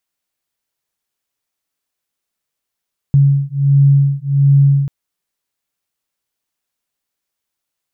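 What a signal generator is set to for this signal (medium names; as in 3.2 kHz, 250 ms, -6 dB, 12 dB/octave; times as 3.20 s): beating tones 139 Hz, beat 1.4 Hz, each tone -11.5 dBFS 1.74 s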